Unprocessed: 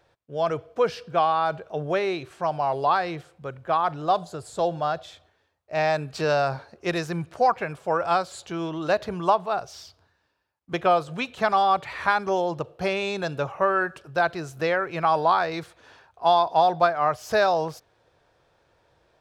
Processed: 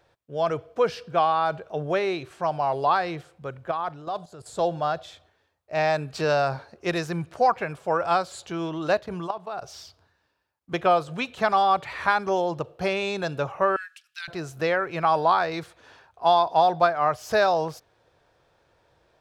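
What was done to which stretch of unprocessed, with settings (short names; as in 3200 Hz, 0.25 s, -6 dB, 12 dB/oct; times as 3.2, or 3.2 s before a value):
3.71–4.46 level quantiser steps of 14 dB
8.99–9.62 level quantiser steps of 16 dB
13.76–14.28 inverse Chebyshev high-pass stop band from 620 Hz, stop band 60 dB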